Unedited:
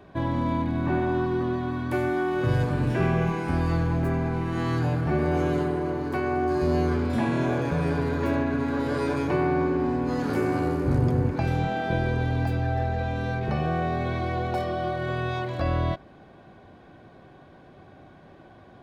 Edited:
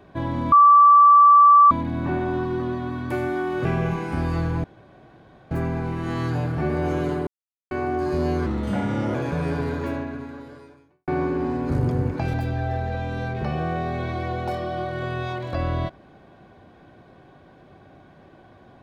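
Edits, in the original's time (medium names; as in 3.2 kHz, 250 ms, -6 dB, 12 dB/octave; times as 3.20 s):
0.52 s: add tone 1.16 kHz -8.5 dBFS 1.19 s
2.46–3.01 s: delete
4.00 s: insert room tone 0.87 s
5.76–6.20 s: mute
6.95–7.54 s: speed 86%
8.09–9.47 s: fade out quadratic
10.09–10.89 s: delete
11.53–12.40 s: delete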